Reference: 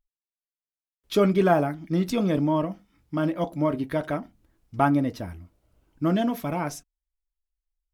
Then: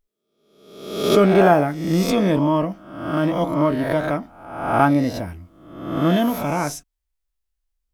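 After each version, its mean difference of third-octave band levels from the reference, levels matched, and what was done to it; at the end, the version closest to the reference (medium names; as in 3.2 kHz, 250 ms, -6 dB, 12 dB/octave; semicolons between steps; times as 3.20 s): 4.5 dB: reverse spectral sustain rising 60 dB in 0.85 s; trim +4 dB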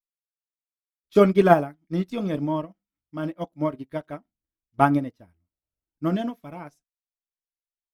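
7.5 dB: upward expansion 2.5:1, over -40 dBFS; trim +6.5 dB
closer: first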